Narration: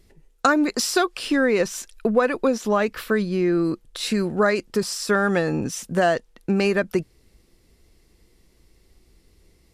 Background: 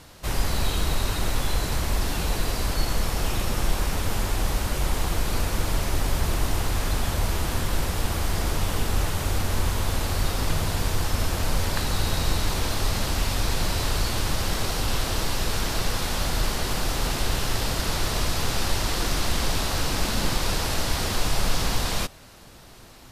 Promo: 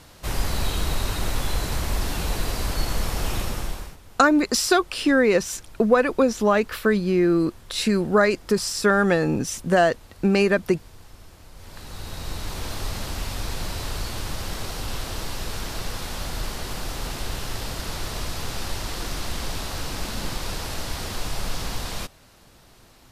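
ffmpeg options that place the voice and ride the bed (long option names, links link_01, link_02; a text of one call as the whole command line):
ffmpeg -i stem1.wav -i stem2.wav -filter_complex "[0:a]adelay=3750,volume=1.5dB[link_01];[1:a]volume=17dB,afade=type=out:start_time=3.38:duration=0.59:silence=0.0794328,afade=type=in:start_time=11.54:duration=1.18:silence=0.133352[link_02];[link_01][link_02]amix=inputs=2:normalize=0" out.wav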